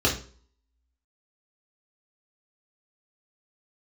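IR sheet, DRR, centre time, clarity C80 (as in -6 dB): -4.0 dB, 20 ms, 14.5 dB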